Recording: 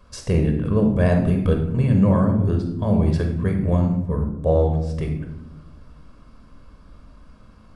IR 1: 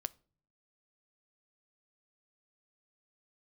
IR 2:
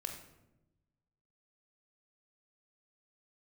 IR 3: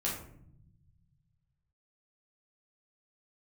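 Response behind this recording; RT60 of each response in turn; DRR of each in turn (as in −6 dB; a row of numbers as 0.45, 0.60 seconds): 2; non-exponential decay, 0.95 s, 0.65 s; 16.5, 3.5, −5.5 decibels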